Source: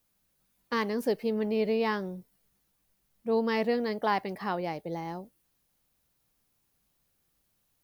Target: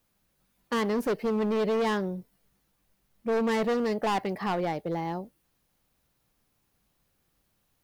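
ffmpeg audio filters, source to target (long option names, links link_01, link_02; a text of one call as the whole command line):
ffmpeg -i in.wav -af "highshelf=frequency=4000:gain=-6.5,asoftclip=type=hard:threshold=-28.5dB,volume=5dB" out.wav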